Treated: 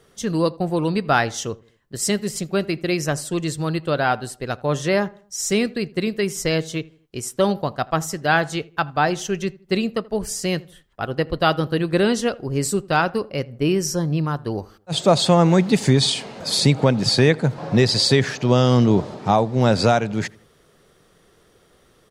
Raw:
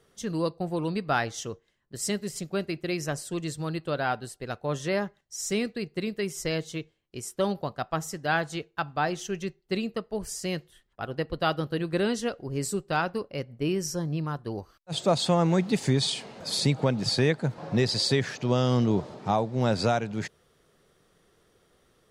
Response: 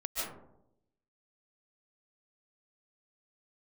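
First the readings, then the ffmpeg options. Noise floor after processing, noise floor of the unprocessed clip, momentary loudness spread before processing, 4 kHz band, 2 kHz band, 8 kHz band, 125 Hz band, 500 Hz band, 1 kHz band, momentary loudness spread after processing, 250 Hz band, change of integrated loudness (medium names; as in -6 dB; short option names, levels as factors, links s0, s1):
-57 dBFS, -68 dBFS, 11 LU, +8.0 dB, +8.0 dB, +8.0 dB, +8.0 dB, +8.0 dB, +8.0 dB, 11 LU, +8.0 dB, +8.0 dB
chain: -filter_complex "[0:a]asplit=2[s0][s1];[s1]adelay=81,lowpass=f=1700:p=1,volume=0.0794,asplit=2[s2][s3];[s3]adelay=81,lowpass=f=1700:p=1,volume=0.45,asplit=2[s4][s5];[s5]adelay=81,lowpass=f=1700:p=1,volume=0.45[s6];[s0][s2][s4][s6]amix=inputs=4:normalize=0,volume=2.51"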